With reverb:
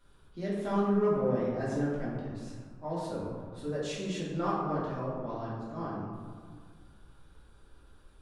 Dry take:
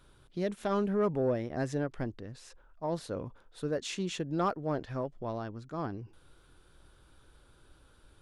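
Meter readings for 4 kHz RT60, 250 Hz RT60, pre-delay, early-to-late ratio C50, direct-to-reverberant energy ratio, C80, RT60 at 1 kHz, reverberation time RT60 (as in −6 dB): 0.80 s, 2.2 s, 3 ms, −0.5 dB, −8.0 dB, 2.0 dB, 1.9 s, 1.8 s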